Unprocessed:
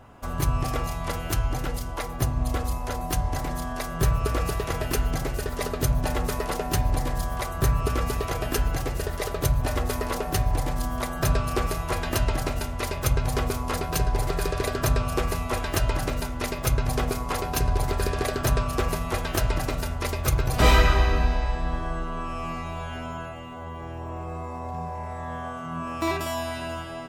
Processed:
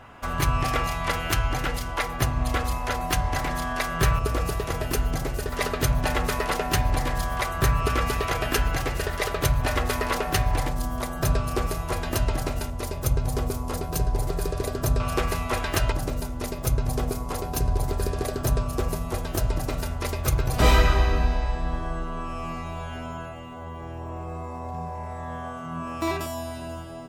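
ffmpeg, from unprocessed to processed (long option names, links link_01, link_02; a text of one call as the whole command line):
ffmpeg -i in.wav -af "asetnsamples=nb_out_samples=441:pad=0,asendcmd='4.19 equalizer g -0.5;5.52 equalizer g 7;10.68 equalizer g -2.5;12.7 equalizer g -8.5;15 equalizer g 3;15.92 equalizer g -8;19.69 equalizer g -2;26.26 equalizer g -10',equalizer=frequency=2100:width_type=o:width=2.3:gain=9" out.wav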